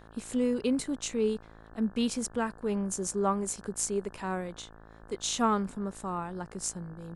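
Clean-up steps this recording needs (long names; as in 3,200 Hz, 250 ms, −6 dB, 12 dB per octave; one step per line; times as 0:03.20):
hum removal 54.8 Hz, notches 32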